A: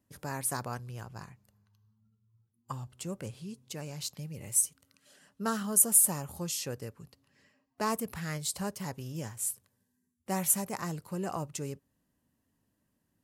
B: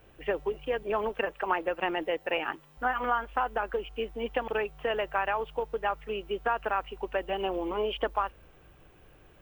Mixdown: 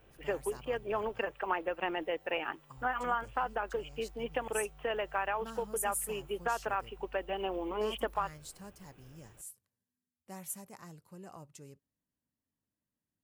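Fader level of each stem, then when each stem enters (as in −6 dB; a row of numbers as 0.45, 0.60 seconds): −14.5, −4.5 decibels; 0.00, 0.00 seconds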